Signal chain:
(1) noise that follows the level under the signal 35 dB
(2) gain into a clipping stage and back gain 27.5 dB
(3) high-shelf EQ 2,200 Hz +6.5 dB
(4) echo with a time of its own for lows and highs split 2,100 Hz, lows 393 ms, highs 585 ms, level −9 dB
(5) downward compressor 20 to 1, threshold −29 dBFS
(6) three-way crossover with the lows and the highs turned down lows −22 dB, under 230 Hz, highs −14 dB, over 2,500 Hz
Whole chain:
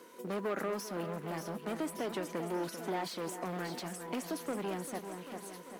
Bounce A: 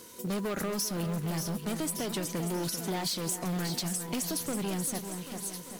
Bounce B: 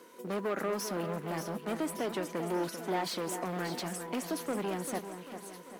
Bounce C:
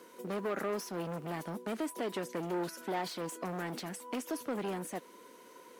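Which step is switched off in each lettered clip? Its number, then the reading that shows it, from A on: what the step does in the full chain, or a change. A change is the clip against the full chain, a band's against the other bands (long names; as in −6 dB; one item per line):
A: 6, 8 kHz band +9.5 dB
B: 5, average gain reduction 2.5 dB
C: 4, change in momentary loudness spread +2 LU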